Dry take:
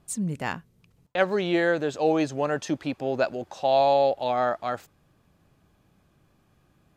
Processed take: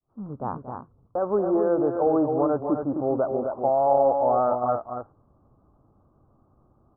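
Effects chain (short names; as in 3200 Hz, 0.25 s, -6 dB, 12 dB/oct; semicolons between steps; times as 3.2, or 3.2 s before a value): opening faded in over 0.52 s; limiter -15.5 dBFS, peak gain reduction 8 dB; on a send: loudspeakers at several distances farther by 79 m -12 dB, 90 m -6 dB; on the sum: short-mantissa float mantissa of 2-bit; steep low-pass 1300 Hz 72 dB/oct; bell 170 Hz -10.5 dB 0.27 oct; gain +3 dB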